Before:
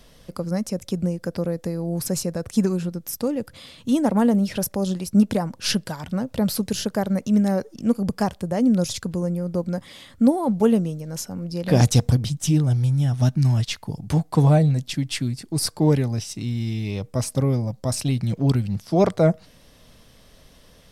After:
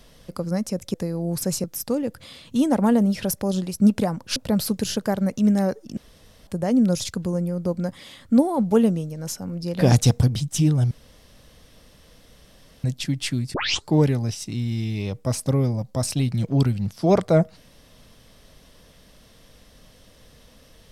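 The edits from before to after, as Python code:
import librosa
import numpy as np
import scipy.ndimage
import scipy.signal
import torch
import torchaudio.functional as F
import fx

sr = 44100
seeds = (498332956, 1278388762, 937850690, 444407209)

y = fx.edit(x, sr, fx.cut(start_s=0.94, length_s=0.64),
    fx.cut(start_s=2.28, length_s=0.69),
    fx.cut(start_s=5.69, length_s=0.56),
    fx.room_tone_fill(start_s=7.86, length_s=0.5),
    fx.room_tone_fill(start_s=12.8, length_s=1.93),
    fx.tape_start(start_s=15.43, length_s=0.33), tone=tone)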